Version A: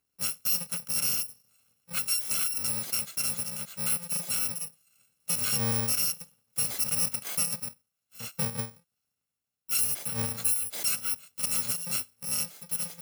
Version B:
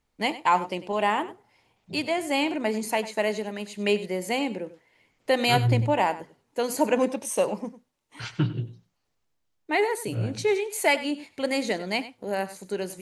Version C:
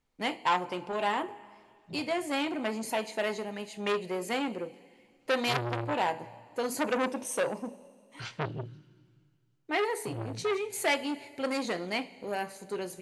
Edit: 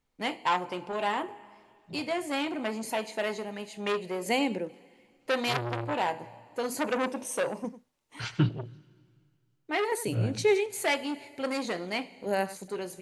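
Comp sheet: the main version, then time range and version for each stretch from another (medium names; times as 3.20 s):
C
4.26–4.69 s: from B
7.64–8.49 s: from B
9.92–10.66 s: from B
12.26–12.68 s: from B
not used: A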